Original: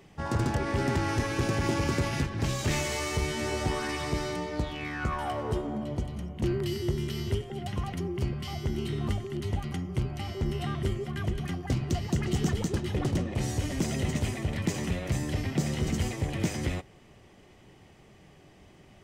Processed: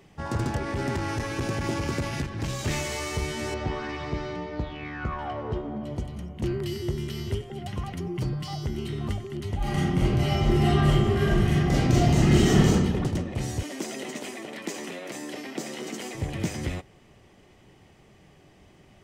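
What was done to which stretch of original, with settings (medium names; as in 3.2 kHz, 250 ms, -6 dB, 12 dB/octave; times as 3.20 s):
0.59–2.61 s: transformer saturation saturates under 150 Hz
3.54–5.84 s: distance through air 180 m
8.06–8.66 s: comb 6.5 ms, depth 86%
9.57–12.70 s: reverb throw, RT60 1.4 s, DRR -10 dB
13.63–16.15 s: high-pass 260 Hz 24 dB/octave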